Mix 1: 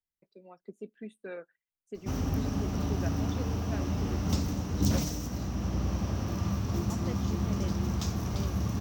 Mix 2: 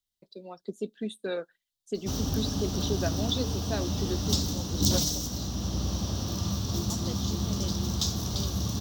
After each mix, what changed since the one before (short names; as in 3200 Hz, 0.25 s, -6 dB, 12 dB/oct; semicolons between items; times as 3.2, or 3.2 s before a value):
first voice +9.0 dB; master: add resonant high shelf 2900 Hz +8 dB, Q 3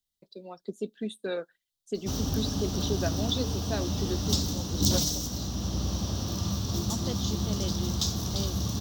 second voice +4.5 dB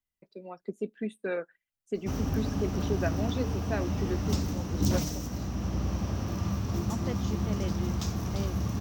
master: add resonant high shelf 2900 Hz -8 dB, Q 3